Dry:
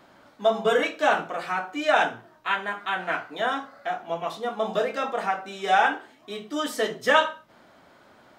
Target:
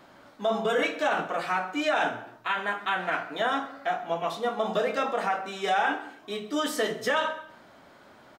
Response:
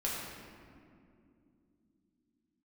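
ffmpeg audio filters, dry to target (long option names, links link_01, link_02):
-filter_complex "[0:a]alimiter=limit=-17.5dB:level=0:latency=1:release=48,aecho=1:1:131:0.0841,asplit=2[link_01][link_02];[1:a]atrim=start_sample=2205,afade=type=out:start_time=0.34:duration=0.01,atrim=end_sample=15435[link_03];[link_02][link_03]afir=irnorm=-1:irlink=0,volume=-16.5dB[link_04];[link_01][link_04]amix=inputs=2:normalize=0"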